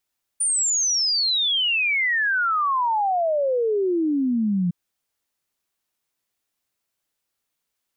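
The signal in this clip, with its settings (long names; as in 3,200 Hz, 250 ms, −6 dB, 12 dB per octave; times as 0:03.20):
exponential sine sweep 9,400 Hz → 170 Hz 4.31 s −18.5 dBFS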